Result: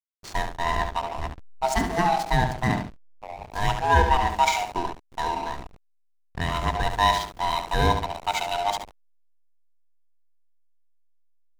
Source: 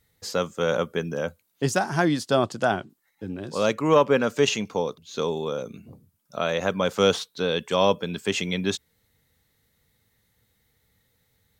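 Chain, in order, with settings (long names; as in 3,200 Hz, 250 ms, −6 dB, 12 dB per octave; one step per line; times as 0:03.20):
neighbouring bands swapped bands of 500 Hz
parametric band 8,800 Hz +2.5 dB 1 octave
mains-hum notches 60/120/180/240/300/360/420 Hz
flutter between parallel walls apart 12 metres, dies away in 0.67 s
slack as between gear wheels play −24.5 dBFS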